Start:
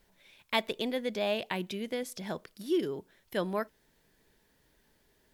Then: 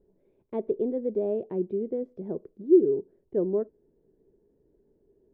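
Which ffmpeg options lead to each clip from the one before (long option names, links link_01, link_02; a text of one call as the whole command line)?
ffmpeg -i in.wav -af "lowpass=frequency=400:width_type=q:width=4.2" out.wav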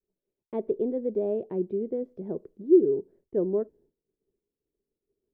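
ffmpeg -i in.wav -af "agate=range=-33dB:threshold=-52dB:ratio=3:detection=peak" out.wav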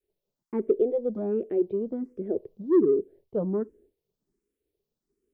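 ffmpeg -i in.wav -filter_complex "[0:a]asplit=2[link_01][link_02];[link_02]asoftclip=type=tanh:threshold=-20dB,volume=-10dB[link_03];[link_01][link_03]amix=inputs=2:normalize=0,asplit=2[link_04][link_05];[link_05]afreqshift=1.3[link_06];[link_04][link_06]amix=inputs=2:normalize=1,volume=3.5dB" out.wav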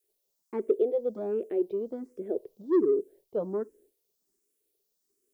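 ffmpeg -i in.wav -af "bass=frequency=250:gain=-14,treble=frequency=4000:gain=14" out.wav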